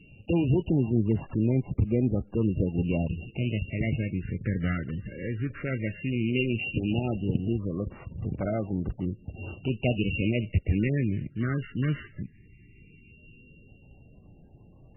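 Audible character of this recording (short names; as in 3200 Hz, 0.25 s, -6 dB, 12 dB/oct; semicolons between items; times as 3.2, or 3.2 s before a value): a buzz of ramps at a fixed pitch in blocks of 16 samples; phasing stages 8, 0.15 Hz, lowest notch 760–2800 Hz; MP3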